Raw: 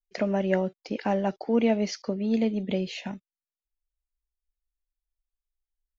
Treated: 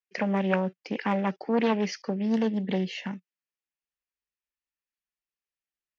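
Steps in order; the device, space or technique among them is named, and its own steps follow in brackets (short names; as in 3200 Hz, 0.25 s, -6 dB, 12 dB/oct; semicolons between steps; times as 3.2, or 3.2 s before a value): full-range speaker at full volume (Doppler distortion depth 0.42 ms; speaker cabinet 150–6200 Hz, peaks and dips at 180 Hz +4 dB, 680 Hz -6 dB, 1800 Hz +6 dB, 2600 Hz +6 dB, 3900 Hz -6 dB); 2.3–3.12 notch 2500 Hz, Q 6.4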